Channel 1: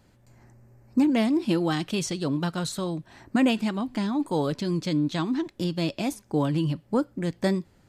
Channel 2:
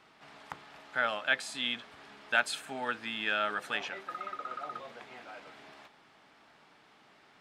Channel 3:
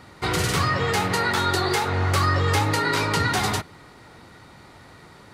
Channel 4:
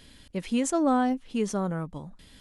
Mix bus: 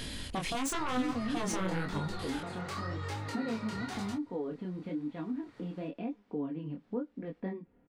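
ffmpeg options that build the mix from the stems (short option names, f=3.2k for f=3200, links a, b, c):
-filter_complex "[0:a]lowpass=f=2.7k:w=0.5412,lowpass=f=2.7k:w=1.3066,equalizer=f=360:t=o:w=1.9:g=10.5,aecho=1:1:4.2:0.65,volume=-10.5dB[a];[1:a]volume=-10.5dB,asplit=3[b][c][d];[b]atrim=end=2.59,asetpts=PTS-STARTPTS,afade=t=out:st=2.586:d=0.004:c=hsin[e];[c]atrim=start=2.59:end=4.87,asetpts=PTS-STARTPTS,volume=0[f];[d]atrim=start=4.87,asetpts=PTS-STARTPTS,afade=t=in:d=0.004:c=hsin[g];[e][f][g]concat=n=3:v=0:a=1[h];[2:a]equalizer=f=12k:t=o:w=0.51:g=-8.5,adelay=550,volume=-9dB[i];[3:a]acompressor=threshold=-28dB:ratio=6,aeval=exprs='0.106*sin(PI/2*4.47*val(0)/0.106)':c=same,volume=1.5dB[j];[a][h][i][j]amix=inputs=4:normalize=0,flanger=delay=19.5:depth=7.9:speed=0.96,acompressor=threshold=-39dB:ratio=2"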